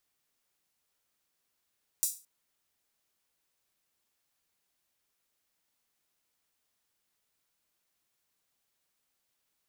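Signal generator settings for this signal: open hi-hat length 0.22 s, high-pass 7.2 kHz, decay 0.32 s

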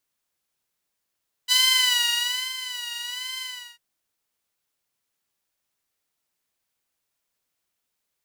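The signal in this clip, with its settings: synth patch with vibrato B5, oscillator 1 saw, oscillator 2 saw, interval +7 st, sub -24.5 dB, noise -23.5 dB, filter highpass, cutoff 2.4 kHz, Q 2.1, filter envelope 0.5 oct, attack 37 ms, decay 1.02 s, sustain -15 dB, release 0.37 s, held 1.93 s, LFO 1.2 Hz, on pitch 72 cents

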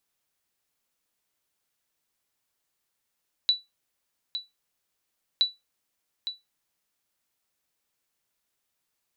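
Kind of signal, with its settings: sonar ping 3.95 kHz, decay 0.19 s, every 1.92 s, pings 2, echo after 0.86 s, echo -10.5 dB -13.5 dBFS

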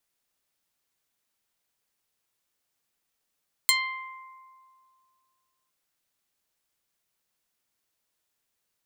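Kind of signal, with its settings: plucked string C6, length 2.01 s, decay 2.25 s, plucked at 0.2, medium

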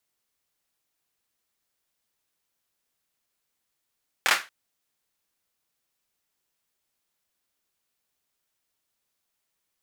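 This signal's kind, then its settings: hand clap length 0.23 s, bursts 3, apart 25 ms, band 1.6 kHz, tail 0.26 s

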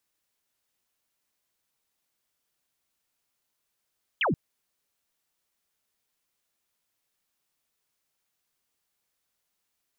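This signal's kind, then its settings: laser zap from 3.4 kHz, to 120 Hz, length 0.13 s sine, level -22 dB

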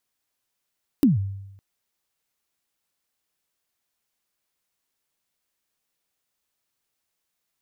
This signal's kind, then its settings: kick drum length 0.56 s, from 310 Hz, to 98 Hz, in 150 ms, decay 0.92 s, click on, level -11 dB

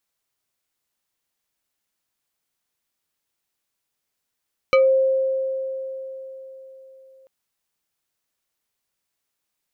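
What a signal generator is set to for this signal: FM tone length 2.54 s, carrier 530 Hz, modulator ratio 3.34, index 1.2, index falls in 0.20 s exponential, decay 4.03 s, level -11 dB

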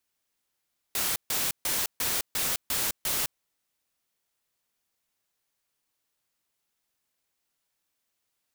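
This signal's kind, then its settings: noise bursts white, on 0.21 s, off 0.14 s, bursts 7, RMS -28 dBFS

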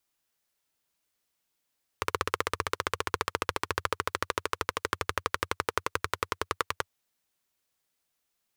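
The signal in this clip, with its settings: single-cylinder engine model, changing speed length 4.86 s, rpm 1900, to 1200, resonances 91/450/1100 Hz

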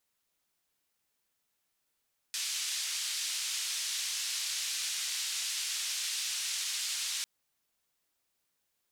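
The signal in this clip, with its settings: noise band 2.9–6.9 kHz, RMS -35 dBFS 4.90 s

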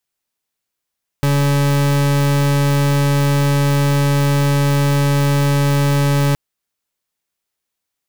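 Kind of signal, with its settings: pulse 142 Hz, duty 40% -14.5 dBFS 5.12 s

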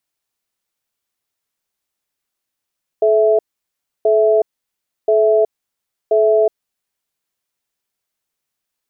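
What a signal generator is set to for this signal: cadence 431 Hz, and 658 Hz, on 0.37 s, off 0.66 s, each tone -12.5 dBFS 4.10 s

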